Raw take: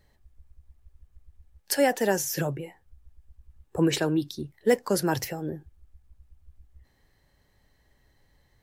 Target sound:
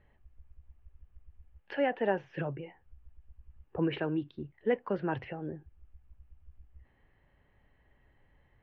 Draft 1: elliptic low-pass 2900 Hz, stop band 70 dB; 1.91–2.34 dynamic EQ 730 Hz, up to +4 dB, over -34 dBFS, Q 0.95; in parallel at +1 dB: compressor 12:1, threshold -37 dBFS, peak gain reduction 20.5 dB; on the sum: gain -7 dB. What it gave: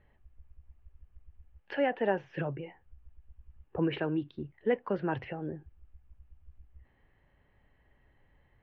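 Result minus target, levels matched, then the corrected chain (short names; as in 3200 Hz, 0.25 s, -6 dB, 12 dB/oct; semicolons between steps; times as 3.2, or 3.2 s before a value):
compressor: peak gain reduction -5.5 dB
elliptic low-pass 2900 Hz, stop band 70 dB; 1.91–2.34 dynamic EQ 730 Hz, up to +4 dB, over -34 dBFS, Q 0.95; in parallel at +1 dB: compressor 12:1, threshold -43 dBFS, peak gain reduction 26 dB; on the sum: gain -7 dB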